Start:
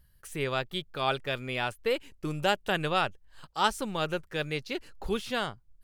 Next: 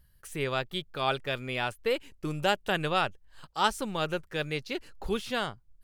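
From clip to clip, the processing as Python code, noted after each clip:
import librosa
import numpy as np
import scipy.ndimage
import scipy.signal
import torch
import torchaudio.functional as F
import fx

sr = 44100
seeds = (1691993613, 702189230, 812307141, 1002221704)

y = x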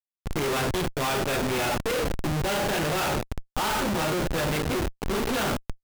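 y = fx.rev_double_slope(x, sr, seeds[0], early_s=0.46, late_s=2.6, knee_db=-18, drr_db=-2.5)
y = fx.schmitt(y, sr, flips_db=-32.0)
y = F.gain(torch.from_numpy(y), 2.0).numpy()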